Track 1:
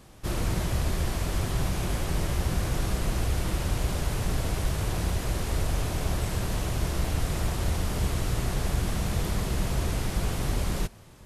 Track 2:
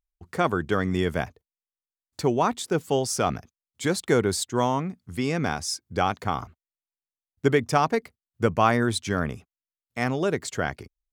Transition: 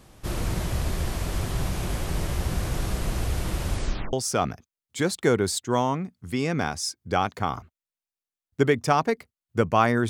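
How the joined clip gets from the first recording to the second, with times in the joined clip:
track 1
0:03.70: tape stop 0.43 s
0:04.13: continue with track 2 from 0:02.98

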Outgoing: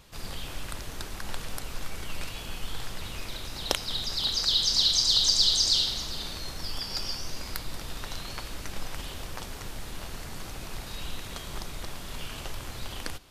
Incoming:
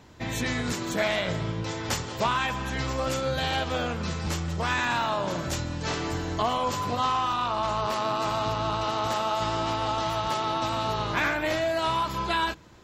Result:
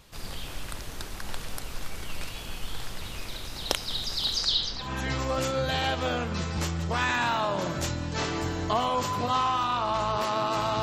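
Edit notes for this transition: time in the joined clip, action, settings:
outgoing
0:04.37–0:04.93: low-pass filter 11,000 Hz → 1,100 Hz
0:04.85: continue with incoming from 0:02.54, crossfade 0.16 s

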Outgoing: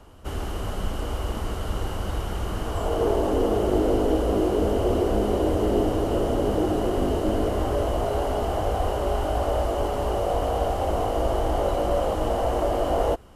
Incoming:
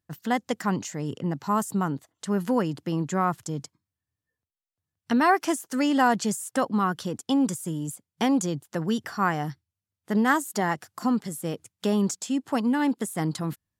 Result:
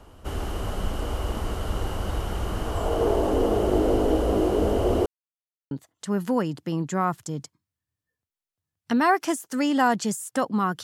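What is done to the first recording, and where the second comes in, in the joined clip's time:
outgoing
0:05.06–0:05.71: silence
0:05.71: continue with incoming from 0:01.91

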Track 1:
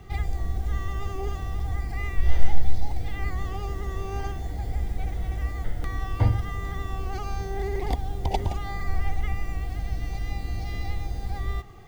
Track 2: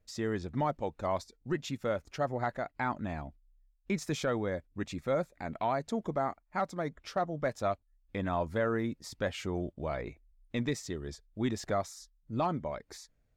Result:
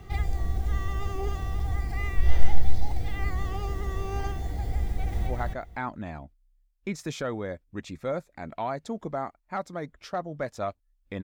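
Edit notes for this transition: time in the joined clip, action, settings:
track 1
0:04.85–0:05.27: delay throw 260 ms, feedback 15%, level −2 dB
0:05.27: continue with track 2 from 0:02.30

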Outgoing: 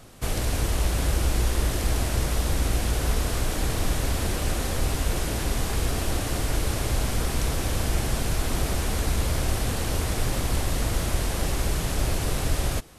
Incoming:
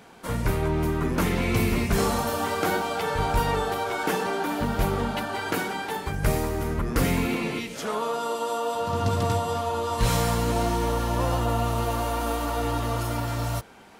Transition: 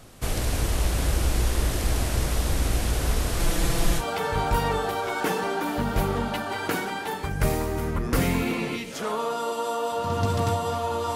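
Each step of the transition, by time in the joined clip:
outgoing
0:03.39–0:04.05: comb filter 5.9 ms, depth 88%
0:04.01: continue with incoming from 0:02.84, crossfade 0.08 s

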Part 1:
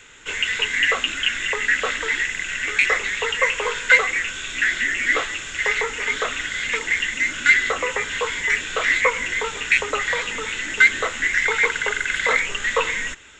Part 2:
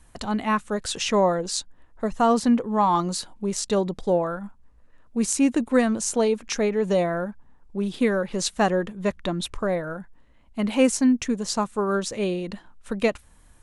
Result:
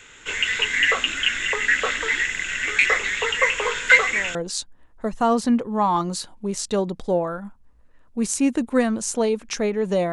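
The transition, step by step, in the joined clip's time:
part 1
0:03.85: mix in part 2 from 0:00.84 0.50 s −17.5 dB
0:04.35: continue with part 2 from 0:01.34

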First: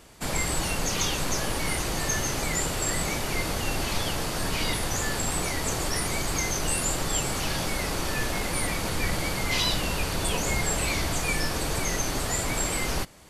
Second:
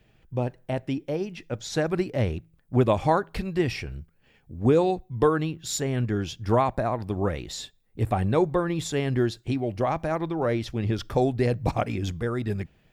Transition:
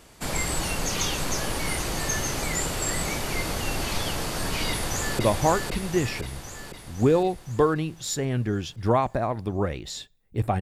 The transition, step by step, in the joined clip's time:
first
0:04.69–0:05.19: delay throw 510 ms, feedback 60%, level −2.5 dB
0:05.19: continue with second from 0:02.82

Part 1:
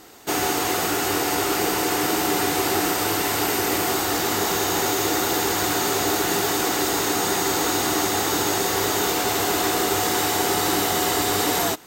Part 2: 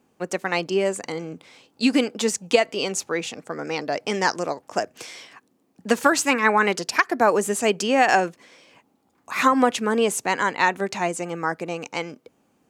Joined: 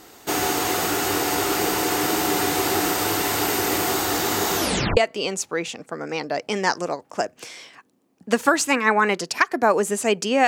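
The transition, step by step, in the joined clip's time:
part 1
0:04.56: tape stop 0.41 s
0:04.97: continue with part 2 from 0:02.55

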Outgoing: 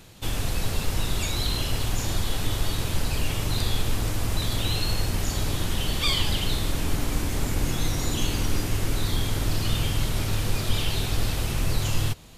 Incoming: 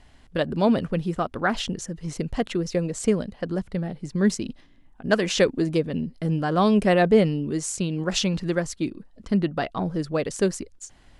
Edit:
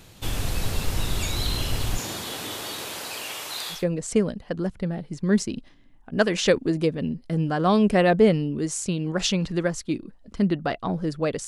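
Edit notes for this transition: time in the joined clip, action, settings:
outgoing
0:01.97–0:03.85: high-pass filter 180 Hz → 940 Hz
0:03.77: continue with incoming from 0:02.69, crossfade 0.16 s

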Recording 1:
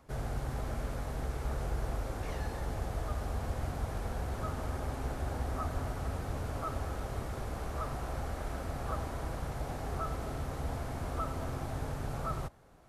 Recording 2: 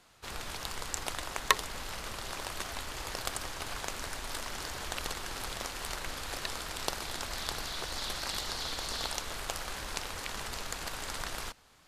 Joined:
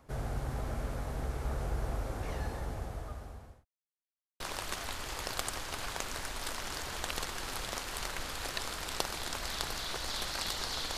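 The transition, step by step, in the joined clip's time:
recording 1
0:02.46–0:03.65: fade out linear
0:03.65–0:04.40: silence
0:04.40: continue with recording 2 from 0:02.28

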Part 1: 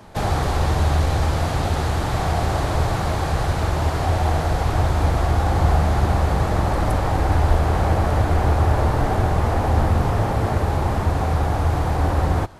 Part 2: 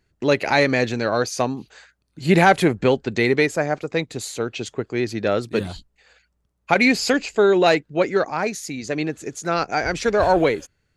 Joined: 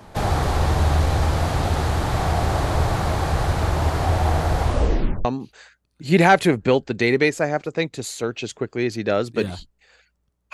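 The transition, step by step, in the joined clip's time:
part 1
0:04.63: tape stop 0.62 s
0:05.25: continue with part 2 from 0:01.42

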